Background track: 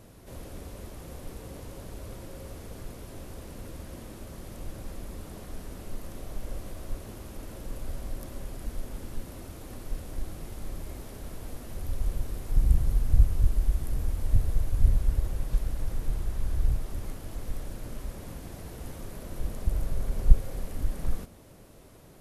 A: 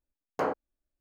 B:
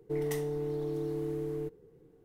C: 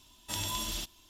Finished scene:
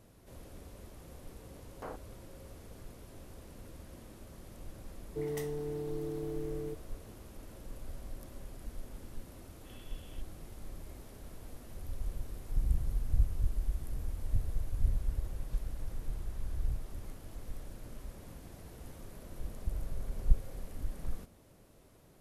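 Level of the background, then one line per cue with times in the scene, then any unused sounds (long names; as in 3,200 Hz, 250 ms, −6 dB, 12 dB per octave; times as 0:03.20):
background track −8.5 dB
0:01.43: mix in A −15 dB
0:05.06: mix in B −4 dB
0:09.36: mix in C −18 dB + Chebyshev band-pass filter 1,200–3,300 Hz, order 4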